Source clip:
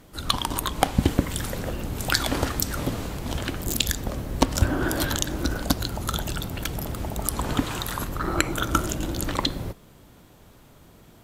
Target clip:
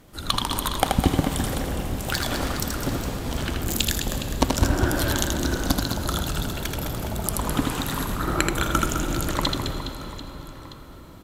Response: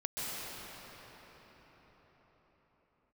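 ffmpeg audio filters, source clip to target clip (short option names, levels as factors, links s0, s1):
-filter_complex "[0:a]asettb=1/sr,asplit=3[s0][s1][s2];[s0]atrim=end=1.664[s3];[s1]atrim=start=1.66:end=2.83,asetpts=PTS-STARTPTS,afade=t=in:d=0.004:c=qsin,afade=t=out:st=1.166:d=0.004:c=qsin,aeval=exprs='(tanh(5.01*val(0)+0.45)-tanh(0.45))/5.01':c=same[s4];[s2]atrim=start=2.826[s5];[s3][s4]acrossfade=d=0.004:c1=hsin:c2=qsin[s6];[s6][s5]acrossfade=d=0.004:c1=qsin:c2=hsin,aecho=1:1:80|208|412.8|740.5|1265:0.631|0.398|0.251|0.158|0.1,asplit=2[s7][s8];[1:a]atrim=start_sample=2205,adelay=85[s9];[s8][s9]afir=irnorm=-1:irlink=0,volume=0.188[s10];[s7][s10]amix=inputs=2:normalize=0,volume=0.891"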